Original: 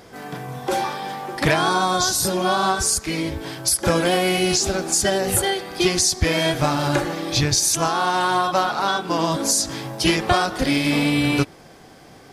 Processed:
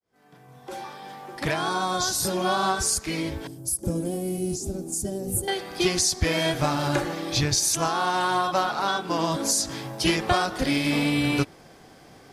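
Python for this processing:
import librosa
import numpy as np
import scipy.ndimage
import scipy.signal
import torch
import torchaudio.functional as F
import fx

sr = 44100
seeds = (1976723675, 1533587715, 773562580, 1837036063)

y = fx.fade_in_head(x, sr, length_s=2.41)
y = fx.curve_eq(y, sr, hz=(290.0, 1600.0, 4000.0, 8700.0), db=(0, -27, -21, -2), at=(3.47, 5.48))
y = F.gain(torch.from_numpy(y), -4.0).numpy()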